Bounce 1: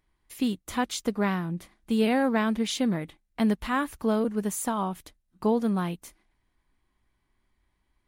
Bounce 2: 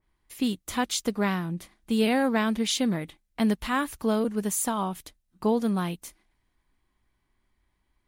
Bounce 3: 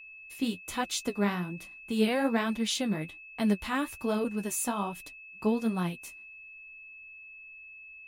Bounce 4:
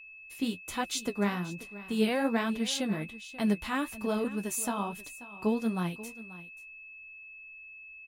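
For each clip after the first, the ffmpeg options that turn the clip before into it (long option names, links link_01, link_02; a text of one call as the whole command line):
ffmpeg -i in.wav -af "adynamicequalizer=threshold=0.00631:dfrequency=2500:dqfactor=0.7:tfrequency=2500:tqfactor=0.7:attack=5:release=100:ratio=0.375:range=2.5:mode=boostabove:tftype=highshelf" out.wav
ffmpeg -i in.wav -af "flanger=delay=5.2:depth=10:regen=31:speed=1.2:shape=triangular,aeval=exprs='val(0)+0.00501*sin(2*PI*2600*n/s)':channel_layout=same" out.wav
ffmpeg -i in.wav -af "aecho=1:1:535:0.141,volume=-1dB" out.wav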